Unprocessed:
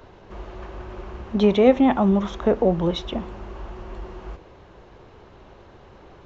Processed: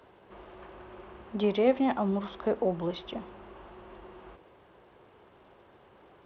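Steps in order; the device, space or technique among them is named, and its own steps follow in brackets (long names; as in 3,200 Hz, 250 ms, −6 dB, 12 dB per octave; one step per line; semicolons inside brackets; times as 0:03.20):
Bluetooth headset (high-pass filter 230 Hz 6 dB per octave; downsampling to 8,000 Hz; level −7.5 dB; SBC 64 kbit/s 32,000 Hz)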